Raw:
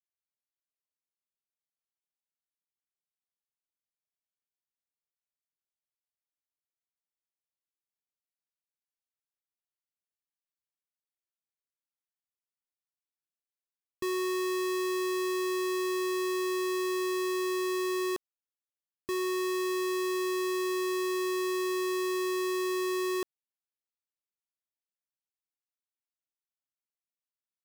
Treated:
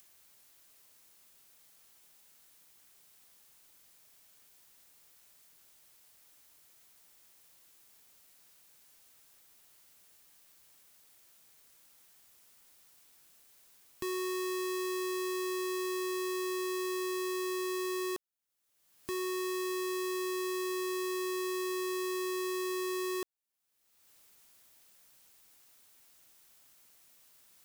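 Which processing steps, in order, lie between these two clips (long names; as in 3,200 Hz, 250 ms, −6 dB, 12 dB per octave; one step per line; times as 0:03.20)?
upward compression, threshold −35 dBFS
high-shelf EQ 6,600 Hz +5.5 dB
level −4.5 dB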